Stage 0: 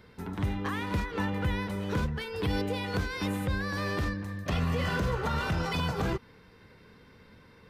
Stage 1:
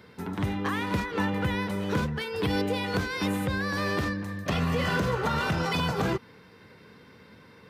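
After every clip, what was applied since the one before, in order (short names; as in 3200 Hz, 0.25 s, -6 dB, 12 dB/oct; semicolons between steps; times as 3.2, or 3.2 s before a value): HPF 110 Hz 12 dB/oct; gain +4 dB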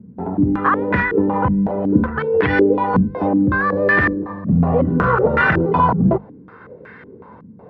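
notches 50/100/150/200 Hz; stepped low-pass 5.4 Hz 210–1800 Hz; gain +8.5 dB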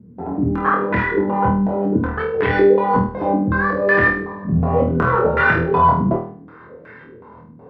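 notches 50/100/150/200 Hz; on a send: flutter echo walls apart 4.3 m, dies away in 0.46 s; on the sum: gain -3 dB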